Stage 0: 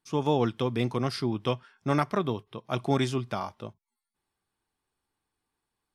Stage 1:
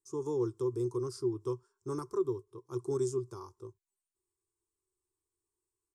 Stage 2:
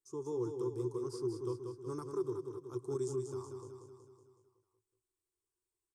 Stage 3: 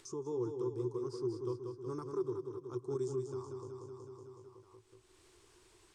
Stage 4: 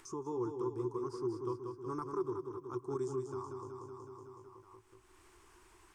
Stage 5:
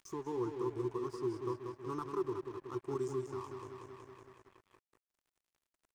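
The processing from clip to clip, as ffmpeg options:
-af "firequalizer=gain_entry='entry(120,0);entry(200,-22);entry(370,11);entry(640,-26);entry(1000,-2);entry(1900,-26);entry(3000,-25);entry(5100,-3);entry(7300,11);entry(11000,0)':delay=0.05:min_phase=1,volume=0.422"
-af "aecho=1:1:186|372|558|744|930|1116|1302:0.501|0.286|0.163|0.0928|0.0529|0.0302|0.0172,volume=0.562"
-af "lowpass=5800,acompressor=mode=upward:threshold=0.0112:ratio=2.5"
-af "equalizer=f=125:t=o:w=1:g=-8,equalizer=f=500:t=o:w=1:g=-10,equalizer=f=1000:t=o:w=1:g=4,equalizer=f=4000:t=o:w=1:g=-10,equalizer=f=8000:t=o:w=1:g=-5,volume=2"
-af "aeval=exprs='sgn(val(0))*max(abs(val(0))-0.00188,0)':c=same,volume=1.12"

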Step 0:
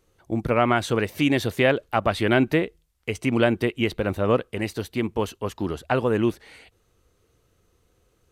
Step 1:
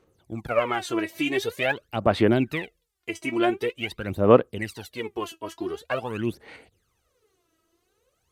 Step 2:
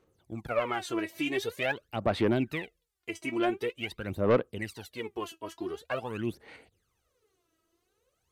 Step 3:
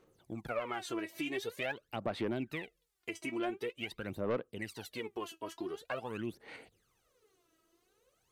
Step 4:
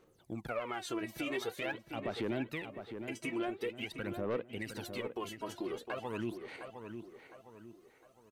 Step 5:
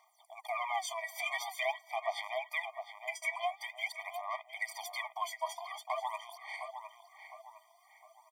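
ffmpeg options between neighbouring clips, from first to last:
-af "highpass=f=180:p=1,aphaser=in_gain=1:out_gain=1:delay=3.1:decay=0.79:speed=0.46:type=sinusoidal,volume=0.473"
-af "asoftclip=type=tanh:threshold=0.282,volume=0.562"
-af "acompressor=threshold=0.00631:ratio=2,equalizer=f=72:w=2.2:g=-13,volume=1.33"
-filter_complex "[0:a]alimiter=level_in=1.68:limit=0.0631:level=0:latency=1:release=127,volume=0.596,asplit=2[s0][s1];[s1]adelay=709,lowpass=f=2300:p=1,volume=0.422,asplit=2[s2][s3];[s3]adelay=709,lowpass=f=2300:p=1,volume=0.42,asplit=2[s4][s5];[s5]adelay=709,lowpass=f=2300:p=1,volume=0.42,asplit=2[s6][s7];[s7]adelay=709,lowpass=f=2300:p=1,volume=0.42,asplit=2[s8][s9];[s9]adelay=709,lowpass=f=2300:p=1,volume=0.42[s10];[s0][s2][s4][s6][s8][s10]amix=inputs=6:normalize=0,volume=1.12"
-af "asuperstop=centerf=3800:order=4:qfactor=6.7,afftfilt=real='re*eq(mod(floor(b*sr/1024/620),2),1)':imag='im*eq(mod(floor(b*sr/1024/620),2),1)':win_size=1024:overlap=0.75,volume=2.66"

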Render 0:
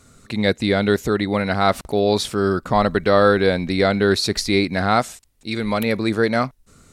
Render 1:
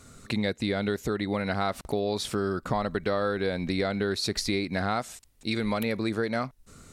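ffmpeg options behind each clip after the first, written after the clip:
-af "acompressor=threshold=0.0562:ratio=6"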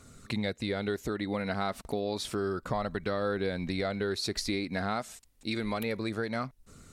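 -af "aphaser=in_gain=1:out_gain=1:delay=4.9:decay=0.22:speed=0.3:type=triangular,volume=0.631"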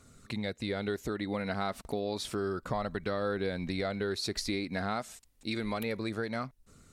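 -af "dynaudnorm=f=110:g=9:m=1.41,volume=0.596"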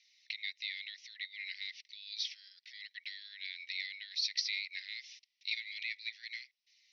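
-af "asuperpass=centerf=3400:order=20:qfactor=0.86,volume=1.41"

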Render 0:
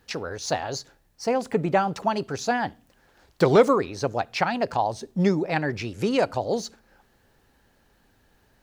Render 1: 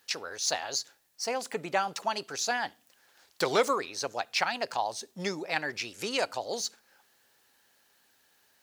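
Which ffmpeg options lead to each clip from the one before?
-af "highpass=f=750:p=1,highshelf=f=2600:g=10,volume=0.596"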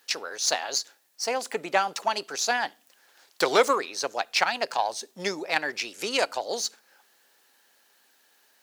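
-af "aeval=exprs='0.316*(cos(1*acos(clip(val(0)/0.316,-1,1)))-cos(1*PI/2))+0.00631*(cos(6*acos(clip(val(0)/0.316,-1,1)))-cos(6*PI/2))+0.00891*(cos(7*acos(clip(val(0)/0.316,-1,1)))-cos(7*PI/2))':c=same,highpass=260,volume=1.88"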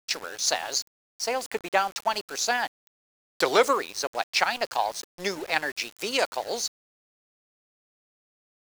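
-af "aeval=exprs='val(0)*gte(abs(val(0)),0.0141)':c=same"

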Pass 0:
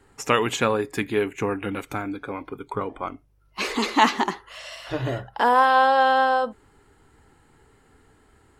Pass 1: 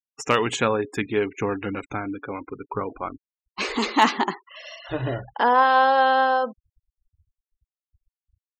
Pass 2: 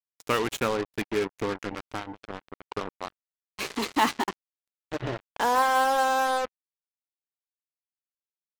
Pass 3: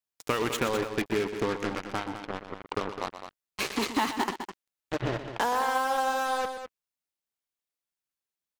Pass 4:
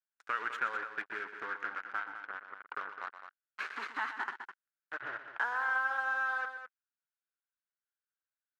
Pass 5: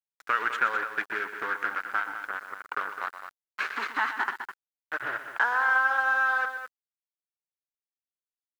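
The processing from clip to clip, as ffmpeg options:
-af "afftfilt=real='re*gte(hypot(re,im),0.0158)':imag='im*gte(hypot(re,im),0.0158)':win_size=1024:overlap=0.75,asoftclip=type=hard:threshold=0.473"
-af "equalizer=f=340:t=o:w=0.51:g=2.5,acrusher=bits=3:mix=0:aa=0.5,volume=0.531"
-filter_complex "[0:a]acompressor=threshold=0.0447:ratio=6,asplit=2[s0][s1];[s1]aecho=0:1:122.4|207:0.282|0.316[s2];[s0][s2]amix=inputs=2:normalize=0,volume=1.41"
-af "bandpass=f=1500:t=q:w=6.1:csg=0,volume=1.78"
-af "acrusher=bits=10:mix=0:aa=0.000001,volume=2.66"

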